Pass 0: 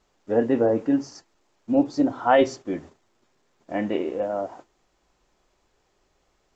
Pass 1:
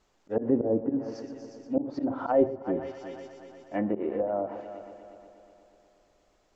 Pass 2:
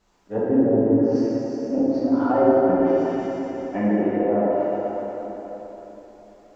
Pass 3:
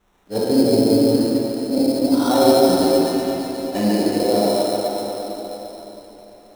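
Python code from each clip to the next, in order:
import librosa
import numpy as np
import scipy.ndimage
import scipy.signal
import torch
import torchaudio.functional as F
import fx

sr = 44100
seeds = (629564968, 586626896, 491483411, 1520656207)

y1 = fx.auto_swell(x, sr, attack_ms=105.0)
y1 = fx.echo_heads(y1, sr, ms=120, heads='first and third', feedback_pct=58, wet_db=-15)
y1 = fx.env_lowpass_down(y1, sr, base_hz=590.0, full_db=-21.0)
y1 = y1 * 10.0 ** (-1.5 / 20.0)
y2 = fx.rev_plate(y1, sr, seeds[0], rt60_s=3.8, hf_ratio=0.55, predelay_ms=0, drr_db=-8.5)
y3 = fx.sample_hold(y2, sr, seeds[1], rate_hz=4700.0, jitter_pct=0)
y3 = y3 + 10.0 ** (-6.0 / 20.0) * np.pad(y3, (int(141 * sr / 1000.0), 0))[:len(y3)]
y3 = y3 * 10.0 ** (2.5 / 20.0)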